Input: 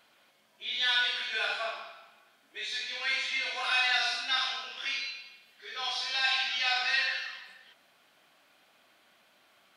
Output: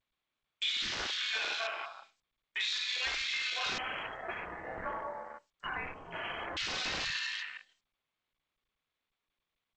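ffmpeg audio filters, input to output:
ffmpeg -i in.wav -filter_complex "[0:a]agate=range=-44dB:threshold=-54dB:ratio=16:detection=peak,highpass=160,equalizer=frequency=930:width=0.73:gain=-4.5,aeval=exprs='0.15*(cos(1*acos(clip(val(0)/0.15,-1,1)))-cos(1*PI/2))+0.0168*(cos(5*acos(clip(val(0)/0.15,-1,1)))-cos(5*PI/2))':channel_layout=same,highshelf=frequency=2300:gain=6.5,aecho=1:1:28|57:0.251|0.266,aeval=exprs='(mod(8.91*val(0)+1,2)-1)/8.91':channel_layout=same,acompressor=threshold=-36dB:ratio=10,afwtdn=0.00794,acontrast=38,asettb=1/sr,asplit=3[link_01][link_02][link_03];[link_01]atrim=end=3.784[link_04];[link_02]atrim=start=3.78:end=6.57,asetpts=PTS-STARTPTS,afade=type=in:duration=0.004:curve=qsin,afade=type=out:start_time=2.786:duration=0.004:curve=qsin,lowpass=frequency=2800:width_type=q:width=0.5098,lowpass=frequency=2800:width_type=q:width=0.6013,lowpass=frequency=2800:width_type=q:width=0.9,lowpass=frequency=2800:width_type=q:width=2.563,afreqshift=-3300[link_05];[link_03]atrim=start=6.566[link_06];[link_04][link_05]acrossfade=duration=0.004:curve1=hsin:curve2=qsin[link_07];[link_07][link_06]acrossfade=duration=0.004:curve1=qsin:curve2=hsin" -ar 16000 -c:a g722 out.g722

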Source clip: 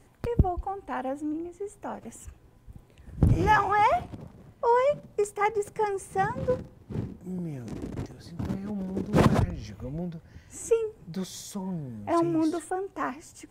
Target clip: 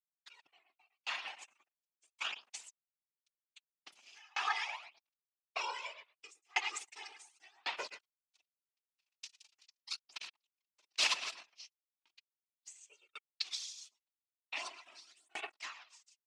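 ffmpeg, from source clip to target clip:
ffmpeg -i in.wav -filter_complex "[0:a]aderivative,asplit=2[link_01][link_02];[link_02]adelay=93,lowpass=frequency=2000:poles=1,volume=-4dB,asplit=2[link_03][link_04];[link_04]adelay=93,lowpass=frequency=2000:poles=1,volume=0.4,asplit=2[link_05][link_06];[link_06]adelay=93,lowpass=frequency=2000:poles=1,volume=0.4,asplit=2[link_07][link_08];[link_08]adelay=93,lowpass=frequency=2000:poles=1,volume=0.4,asplit=2[link_09][link_10];[link_10]adelay=93,lowpass=frequency=2000:poles=1,volume=0.4[link_11];[link_01][link_03][link_05][link_07][link_09][link_11]amix=inputs=6:normalize=0,atempo=0.83,aeval=exprs='sgn(val(0))*max(abs(val(0))-0.00282,0)':channel_layout=same,acompressor=threshold=-57dB:ratio=5,aphaser=in_gain=1:out_gain=1:delay=5:decay=0.48:speed=0.39:type=sinusoidal,afftdn=noise_reduction=15:noise_floor=-80,crystalizer=i=8.5:c=0,afftfilt=real='hypot(re,im)*cos(2*PI*random(0))':imag='hypot(re,im)*sin(2*PI*random(1))':win_size=512:overlap=0.75,dynaudnorm=framelen=140:gausssize=17:maxgain=15dB,highpass=490,equalizer=frequency=500:width_type=q:width=4:gain=-8,equalizer=frequency=1600:width_type=q:width=4:gain=-5,equalizer=frequency=2600:width_type=q:width=4:gain=7,lowpass=frequency=4900:width=0.5412,lowpass=frequency=4900:width=1.3066,aeval=exprs='val(0)*pow(10,-36*if(lt(mod(0.91*n/s,1),2*abs(0.91)/1000),1-mod(0.91*n/s,1)/(2*abs(0.91)/1000),(mod(0.91*n/s,1)-2*abs(0.91)/1000)/(1-2*abs(0.91)/1000))/20)':channel_layout=same,volume=11.5dB" out.wav

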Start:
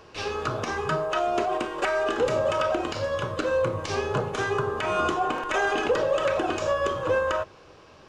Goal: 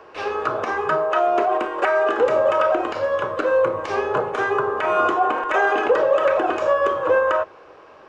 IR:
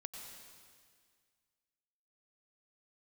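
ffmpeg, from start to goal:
-filter_complex "[0:a]acrossover=split=330 2200:gain=0.158 1 0.178[link_01][link_02][link_03];[link_01][link_02][link_03]amix=inputs=3:normalize=0,volume=7.5dB"

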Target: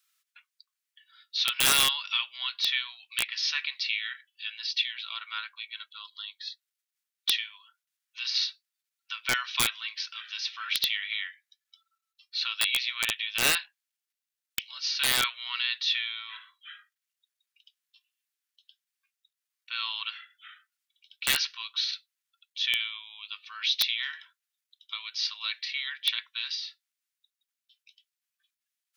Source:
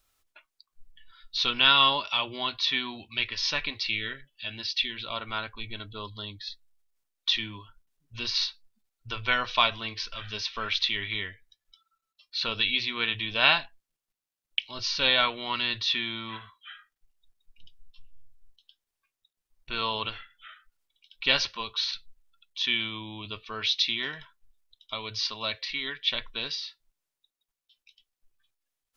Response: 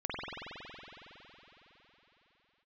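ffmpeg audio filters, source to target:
-af "highpass=frequency=1400:width=0.5412,highpass=frequency=1400:width=1.3066,aeval=exprs='(mod(4.73*val(0)+1,2)-1)/4.73':channel_layout=same"

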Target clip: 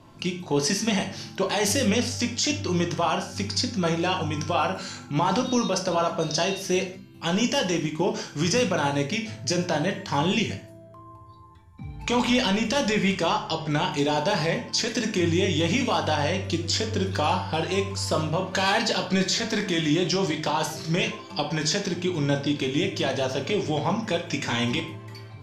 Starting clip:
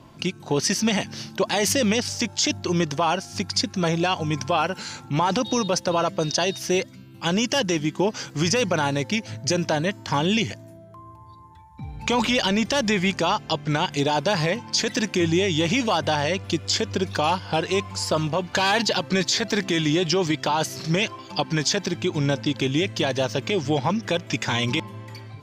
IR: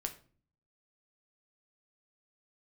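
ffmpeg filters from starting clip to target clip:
-filter_complex "[1:a]atrim=start_sample=2205,afade=type=out:start_time=0.15:duration=0.01,atrim=end_sample=7056,asetrate=26019,aresample=44100[link_01];[0:a][link_01]afir=irnorm=-1:irlink=0,volume=-4.5dB"

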